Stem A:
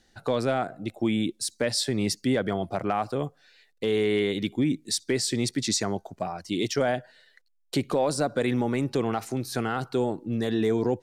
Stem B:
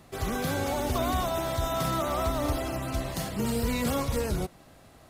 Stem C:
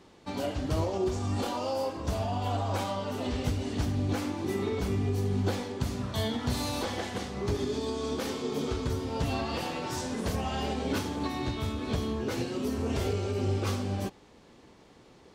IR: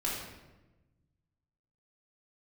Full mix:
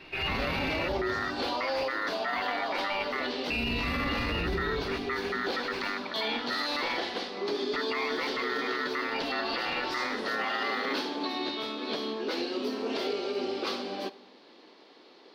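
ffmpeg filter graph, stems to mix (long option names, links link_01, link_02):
-filter_complex "[0:a]aeval=exprs='val(0)*sgn(sin(2*PI*1300*n/s))':channel_layout=same,volume=0.5dB,asplit=2[link_01][link_02];[link_02]volume=-23.5dB[link_03];[1:a]volume=-0.5dB,asplit=3[link_04][link_05][link_06];[link_04]atrim=end=0.88,asetpts=PTS-STARTPTS,afade=type=out:start_time=0.876:duration=0.004:curve=hsin[link_07];[link_05]atrim=start=0.88:end=3.5,asetpts=PTS-STARTPTS,volume=0[link_08];[link_06]atrim=start=3.5,asetpts=PTS-STARTPTS,afade=type=in:duration=0.004:curve=hsin[link_09];[link_07][link_08][link_09]concat=n=3:v=0:a=1,asplit=2[link_10][link_11];[link_11]volume=-6dB[link_12];[2:a]highpass=frequency=280:width=0.5412,highpass=frequency=280:width=1.3066,volume=1dB,asplit=2[link_13][link_14];[link_14]volume=-20.5dB[link_15];[link_01][link_10]amix=inputs=2:normalize=0,lowpass=frequency=2500:width_type=q:width=0.5098,lowpass=frequency=2500:width_type=q:width=0.6013,lowpass=frequency=2500:width_type=q:width=0.9,lowpass=frequency=2500:width_type=q:width=2.563,afreqshift=-2900,acompressor=threshold=-28dB:ratio=6,volume=0dB[link_16];[3:a]atrim=start_sample=2205[link_17];[link_03][link_12][link_15]amix=inputs=3:normalize=0[link_18];[link_18][link_17]afir=irnorm=-1:irlink=0[link_19];[link_13][link_16][link_19]amix=inputs=3:normalize=0,highshelf=frequency=5800:width_type=q:width=3:gain=-10,alimiter=limit=-22dB:level=0:latency=1:release=13"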